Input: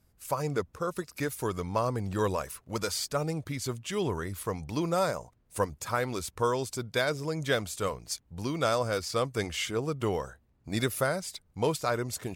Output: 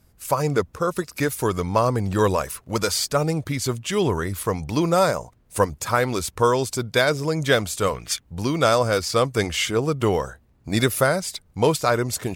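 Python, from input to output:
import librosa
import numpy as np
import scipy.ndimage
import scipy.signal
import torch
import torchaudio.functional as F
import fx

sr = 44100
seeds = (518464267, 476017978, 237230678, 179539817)

y = fx.spec_box(x, sr, start_s=7.95, length_s=0.25, low_hz=1100.0, high_hz=3800.0, gain_db=10)
y = y * 10.0 ** (9.0 / 20.0)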